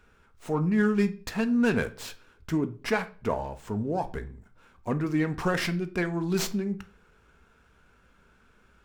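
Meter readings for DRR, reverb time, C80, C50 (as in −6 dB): 9.0 dB, 0.40 s, 22.0 dB, 16.5 dB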